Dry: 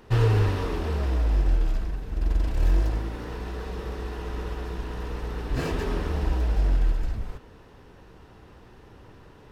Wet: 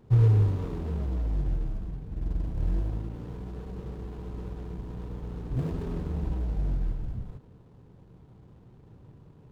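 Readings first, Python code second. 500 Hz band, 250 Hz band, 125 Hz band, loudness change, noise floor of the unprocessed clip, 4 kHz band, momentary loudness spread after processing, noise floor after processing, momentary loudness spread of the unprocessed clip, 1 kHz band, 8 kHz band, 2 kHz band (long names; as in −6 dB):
−7.5 dB, −2.0 dB, −0.5 dB, −3.5 dB, −50 dBFS, −15.5 dB, 13 LU, −54 dBFS, 10 LU, −11.0 dB, can't be measured, −16.0 dB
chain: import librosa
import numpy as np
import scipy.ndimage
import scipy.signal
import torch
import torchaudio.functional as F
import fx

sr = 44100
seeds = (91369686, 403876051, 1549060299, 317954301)

y = scipy.ndimage.median_filter(x, 25, mode='constant')
y = fx.peak_eq(y, sr, hz=140.0, db=13.5, octaves=1.4)
y = F.gain(torch.from_numpy(y), -9.0).numpy()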